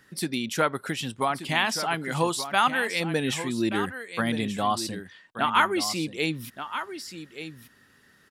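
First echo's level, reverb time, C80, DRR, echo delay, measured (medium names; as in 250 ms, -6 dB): -11.0 dB, no reverb, no reverb, no reverb, 1179 ms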